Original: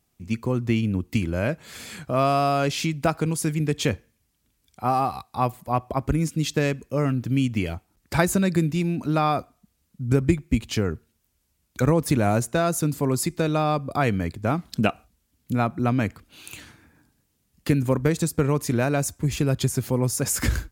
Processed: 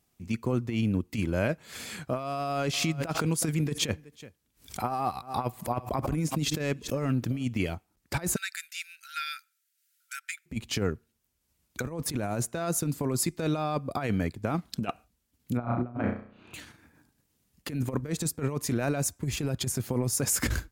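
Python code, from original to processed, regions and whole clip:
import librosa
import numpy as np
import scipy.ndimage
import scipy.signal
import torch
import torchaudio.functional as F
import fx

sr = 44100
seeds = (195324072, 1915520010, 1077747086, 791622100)

y = fx.chain(x, sr, fx.echo_single(ms=372, db=-22.5),
    fx.pre_swell(db_per_s=150.0), at=(2.36, 7.43))
y = fx.chain(y, sr, fx.brickwall_highpass(low_hz=1300.0),
    fx.high_shelf(hz=6700.0, db=5.0), at=(8.36, 10.46))
y = fx.chain(y, sr, fx.lowpass(hz=1400.0, slope=12),
    fx.room_flutter(wall_m=5.7, rt60_s=0.56), at=(15.57, 16.54))
y = fx.low_shelf(y, sr, hz=110.0, db=-4.0)
y = fx.over_compress(y, sr, threshold_db=-24.0, ratio=-0.5)
y = fx.transient(y, sr, attack_db=-1, sustain_db=-5)
y = y * librosa.db_to_amplitude(-3.0)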